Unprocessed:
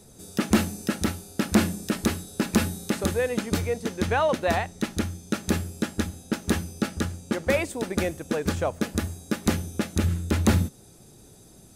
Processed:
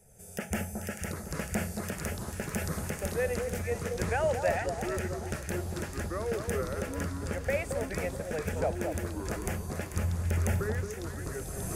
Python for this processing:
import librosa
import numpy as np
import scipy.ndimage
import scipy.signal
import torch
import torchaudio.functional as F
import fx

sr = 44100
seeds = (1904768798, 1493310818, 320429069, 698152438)

y = fx.recorder_agc(x, sr, target_db=-12.0, rise_db_per_s=21.0, max_gain_db=30)
y = fx.fixed_phaser(y, sr, hz=1100.0, stages=6)
y = fx.echo_pitch(y, sr, ms=616, semitones=-5, count=3, db_per_echo=-6.0)
y = fx.echo_alternate(y, sr, ms=221, hz=1200.0, feedback_pct=64, wet_db=-5)
y = F.gain(torch.from_numpy(y), -7.0).numpy()